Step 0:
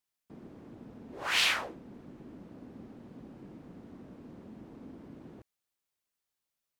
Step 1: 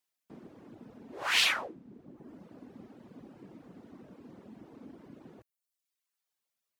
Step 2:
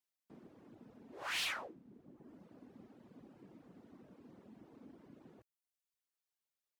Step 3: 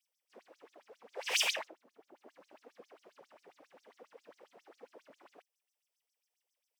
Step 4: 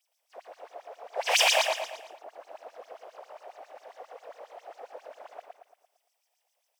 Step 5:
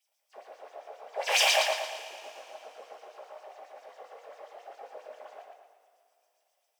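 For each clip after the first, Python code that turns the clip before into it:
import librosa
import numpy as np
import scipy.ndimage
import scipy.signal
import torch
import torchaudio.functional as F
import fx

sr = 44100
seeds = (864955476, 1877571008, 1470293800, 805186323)

y1 = fx.dereverb_blind(x, sr, rt60_s=0.94)
y1 = fx.highpass(y1, sr, hz=170.0, slope=6)
y1 = y1 * 10.0 ** (2.0 / 20.0)
y2 = 10.0 ** (-25.5 / 20.0) * np.tanh(y1 / 10.0 ** (-25.5 / 20.0))
y2 = y2 * 10.0 ** (-7.5 / 20.0)
y3 = fx.lower_of_two(y2, sr, delay_ms=0.36)
y3 = fx.filter_lfo_highpass(y3, sr, shape='sine', hz=7.4, low_hz=460.0, high_hz=6600.0, q=4.8)
y3 = y3 * 10.0 ** (4.0 / 20.0)
y4 = fx.highpass_res(y3, sr, hz=680.0, q=3.6)
y4 = fx.echo_feedback(y4, sr, ms=114, feedback_pct=46, wet_db=-3.5)
y4 = y4 * 10.0 ** (6.5 / 20.0)
y5 = fx.rev_double_slope(y4, sr, seeds[0], early_s=0.22, late_s=3.0, knee_db=-21, drr_db=1.5)
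y5 = y5 * 10.0 ** (-3.0 / 20.0)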